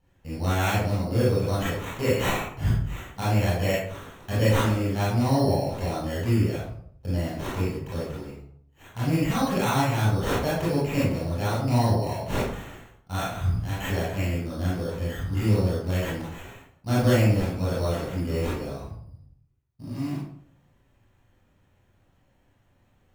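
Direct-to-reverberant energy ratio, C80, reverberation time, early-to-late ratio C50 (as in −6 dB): −9.5 dB, 4.5 dB, 0.65 s, −1.0 dB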